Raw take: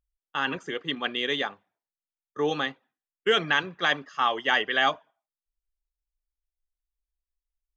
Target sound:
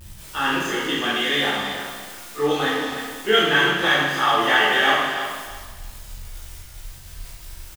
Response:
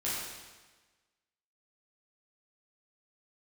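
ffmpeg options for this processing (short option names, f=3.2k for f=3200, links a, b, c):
-filter_complex "[0:a]aeval=exprs='val(0)+0.5*0.02*sgn(val(0))':c=same,aecho=1:1:322|644|966:0.335|0.0737|0.0162[a];[1:a]atrim=start_sample=2205,afade=t=out:st=0.36:d=0.01,atrim=end_sample=16317[b];[a][b]afir=irnorm=-1:irlink=0"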